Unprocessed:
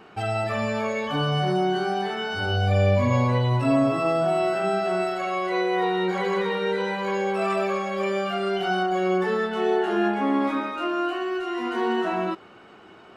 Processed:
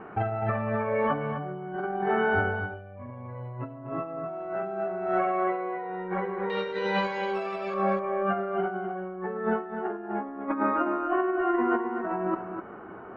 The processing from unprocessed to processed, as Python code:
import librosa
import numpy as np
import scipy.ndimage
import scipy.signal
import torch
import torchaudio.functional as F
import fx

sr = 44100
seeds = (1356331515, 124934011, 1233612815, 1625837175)

y = fx.lowpass(x, sr, hz=fx.steps((0.0, 1800.0), (6.5, 5300.0), (7.74, 1600.0)), slope=24)
y = fx.over_compress(y, sr, threshold_db=-29.0, ratio=-0.5)
y = y + 10.0 ** (-8.0 / 20.0) * np.pad(y, (int(253 * sr / 1000.0), 0))[:len(y)]